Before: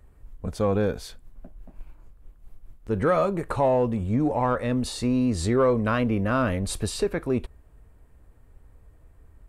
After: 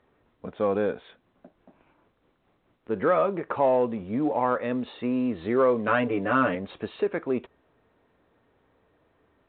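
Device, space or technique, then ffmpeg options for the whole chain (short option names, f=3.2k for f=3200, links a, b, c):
telephone: -filter_complex "[0:a]asettb=1/sr,asplit=3[a][b][c];[a]atrim=end=5.874[d];[b]atrim=start=5.87:end=6.55,asetpts=PTS-STARTPTS,afade=t=in:d=0.004:c=qsin,afade=t=out:st=0.676:d=0.004:c=qsin,aecho=1:1:6.9:0.97,atrim=end_sample=29988[e];[c]atrim=start=6.546[f];[d][e]acrossfade=d=0.004:c1=hsin:c2=qsin[g];[g][f]acrossfade=d=0.004:c1=qsin:c2=hsin,highpass=250,lowpass=3.2k" -ar 8000 -c:a pcm_mulaw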